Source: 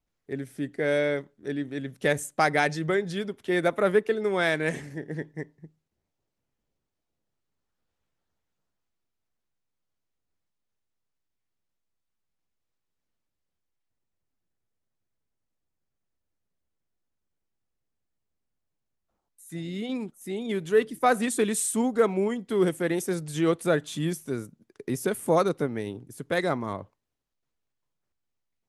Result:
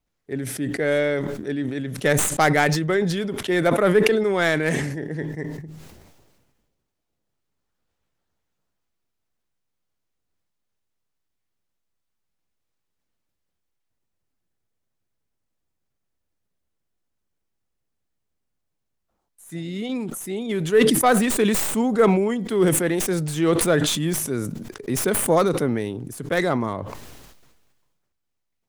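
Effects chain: tracing distortion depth 0.11 ms; decay stretcher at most 35 dB/s; trim +3.5 dB

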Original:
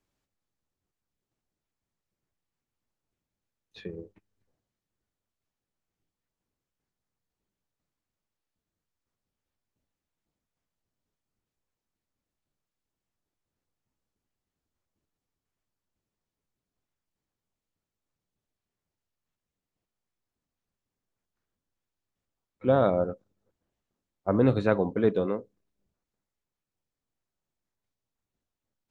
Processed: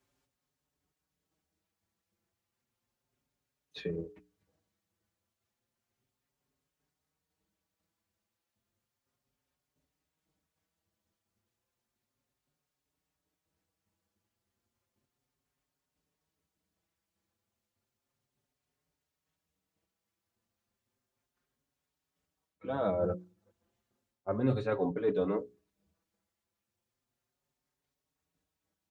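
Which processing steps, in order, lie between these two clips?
reverse; compression 12:1, threshold -29 dBFS, peak gain reduction 13 dB; reverse; high-pass 55 Hz; hum notches 60/120/180/240/300/360/420 Hz; endless flanger 5.2 ms +0.33 Hz; trim +6.5 dB

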